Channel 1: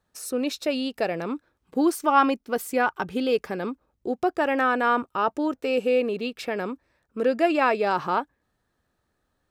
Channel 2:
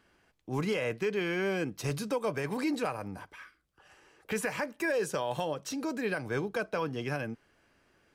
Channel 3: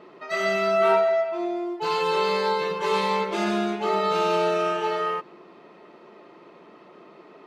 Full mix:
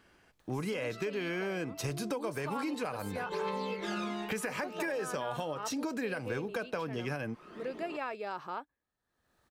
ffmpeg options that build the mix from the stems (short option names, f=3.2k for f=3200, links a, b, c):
-filter_complex "[0:a]lowshelf=f=410:g=-5,acompressor=mode=upward:threshold=-42dB:ratio=2.5,adelay=400,volume=-13dB[a];[1:a]volume=3dB,asplit=2[b][c];[2:a]aphaser=in_gain=1:out_gain=1:delay=1.1:decay=0.65:speed=0.67:type=triangular,acompressor=mode=upward:threshold=-30dB:ratio=2.5,adelay=500,volume=-8dB[d];[c]apad=whole_len=351367[e];[d][e]sidechaincompress=threshold=-45dB:ratio=5:attack=16:release=244[f];[a][b][f]amix=inputs=3:normalize=0,acompressor=threshold=-32dB:ratio=6"